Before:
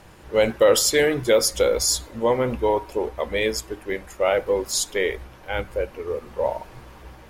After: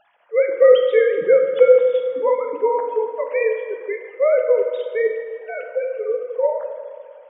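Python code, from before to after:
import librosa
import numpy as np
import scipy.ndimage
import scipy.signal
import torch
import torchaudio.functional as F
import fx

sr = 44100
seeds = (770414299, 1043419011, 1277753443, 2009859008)

y = fx.sine_speech(x, sr)
y = fx.rev_fdn(y, sr, rt60_s=2.1, lf_ratio=1.25, hf_ratio=0.6, size_ms=29.0, drr_db=3.5)
y = F.gain(torch.from_numpy(y), 3.0).numpy()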